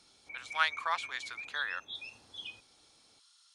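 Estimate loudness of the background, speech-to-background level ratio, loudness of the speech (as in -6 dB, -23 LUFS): -43.5 LUFS, 8.5 dB, -35.0 LUFS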